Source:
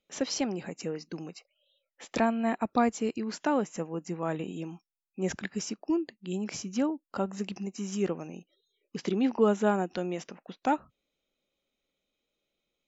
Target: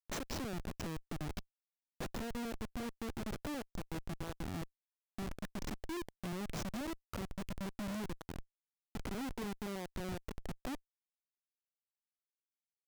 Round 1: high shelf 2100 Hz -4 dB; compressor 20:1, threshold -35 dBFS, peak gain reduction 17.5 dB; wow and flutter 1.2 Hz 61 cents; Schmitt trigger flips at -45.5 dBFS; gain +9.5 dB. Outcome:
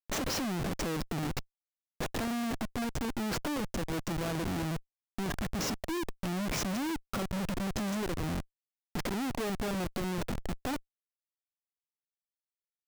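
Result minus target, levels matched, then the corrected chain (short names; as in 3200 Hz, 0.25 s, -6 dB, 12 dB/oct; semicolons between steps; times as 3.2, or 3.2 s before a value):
compressor: peak gain reduction -7 dB
high shelf 2100 Hz -4 dB; compressor 20:1, threshold -42.5 dBFS, peak gain reduction 25 dB; wow and flutter 1.2 Hz 61 cents; Schmitt trigger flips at -45.5 dBFS; gain +9.5 dB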